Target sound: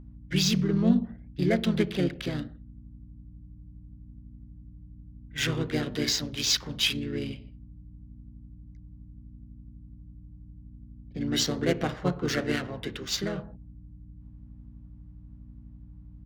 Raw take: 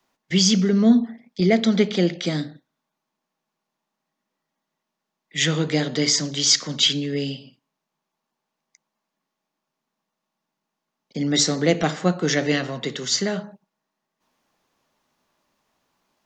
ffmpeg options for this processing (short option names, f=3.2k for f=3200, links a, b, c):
-filter_complex "[0:a]adynamicsmooth=sensitivity=3.5:basefreq=2.2k,aeval=exprs='val(0)+0.0126*(sin(2*PI*60*n/s)+sin(2*PI*2*60*n/s)/2+sin(2*PI*3*60*n/s)/3+sin(2*PI*4*60*n/s)/4+sin(2*PI*5*60*n/s)/5)':c=same,asplit=2[a][b];[b]asetrate=35002,aresample=44100,atempo=1.25992,volume=-3dB[c];[a][c]amix=inputs=2:normalize=0,volume=-8.5dB"